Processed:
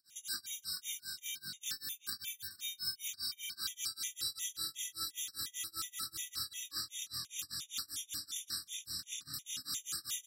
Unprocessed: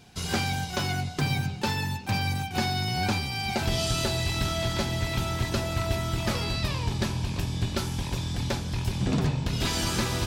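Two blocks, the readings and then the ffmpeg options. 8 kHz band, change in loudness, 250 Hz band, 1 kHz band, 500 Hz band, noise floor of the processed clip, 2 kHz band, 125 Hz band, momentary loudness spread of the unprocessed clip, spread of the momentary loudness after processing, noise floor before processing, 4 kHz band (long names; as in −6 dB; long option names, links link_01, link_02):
−2.5 dB, −11.0 dB, −32.5 dB, −24.5 dB, below −40 dB, −67 dBFS, −18.0 dB, −35.5 dB, 4 LU, 3 LU, −36 dBFS, −8.0 dB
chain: -af "aecho=1:1:2.5:0.32,acontrast=77,aderivative,acompressor=threshold=-32dB:ratio=6,aecho=1:1:491:0.708,flanger=delay=20:depth=6.8:speed=0.37,afftfilt=real='re*(1-between(b*sr/4096,340,1100))':imag='im*(1-between(b*sr/4096,340,1100))':win_size=4096:overlap=0.75,equalizer=frequency=2200:width_type=o:width=0.76:gain=-10,tremolo=f=5.1:d=0.98,afftfilt=real='re*gt(sin(2*PI*2.8*pts/sr)*(1-2*mod(floor(b*sr/1024/1900),2)),0)':imag='im*gt(sin(2*PI*2.8*pts/sr)*(1-2*mod(floor(b*sr/1024/1900),2)),0)':win_size=1024:overlap=0.75,volume=4.5dB"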